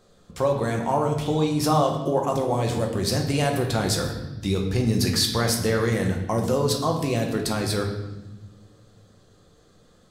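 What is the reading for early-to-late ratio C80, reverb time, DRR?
8.5 dB, not exponential, 1.0 dB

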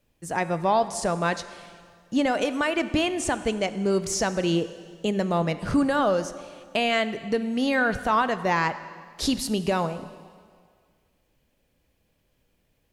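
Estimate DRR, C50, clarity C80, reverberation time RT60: 12.0 dB, 13.5 dB, 14.5 dB, 1.9 s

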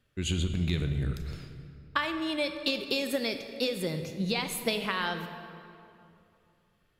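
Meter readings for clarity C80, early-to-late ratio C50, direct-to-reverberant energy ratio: 9.0 dB, 8.0 dB, 7.0 dB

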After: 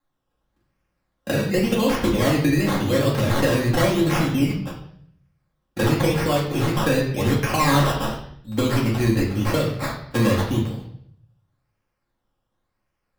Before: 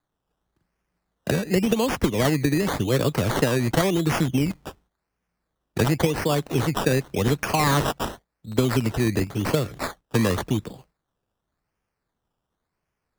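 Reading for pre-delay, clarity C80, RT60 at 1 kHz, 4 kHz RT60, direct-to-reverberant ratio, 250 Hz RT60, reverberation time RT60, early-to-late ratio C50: 4 ms, 9.0 dB, 0.55 s, 0.65 s, -6.0 dB, 0.85 s, 0.65 s, 5.5 dB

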